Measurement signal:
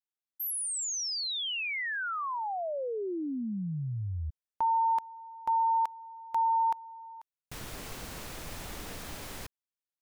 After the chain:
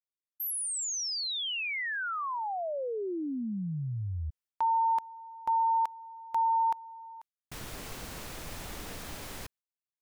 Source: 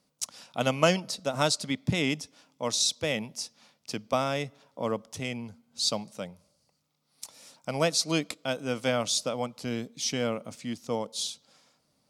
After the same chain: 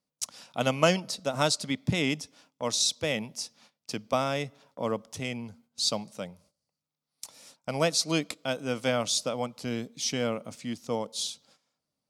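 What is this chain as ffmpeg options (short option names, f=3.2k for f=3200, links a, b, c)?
-af "agate=range=-14dB:threshold=-51dB:ratio=16:release=399:detection=peak"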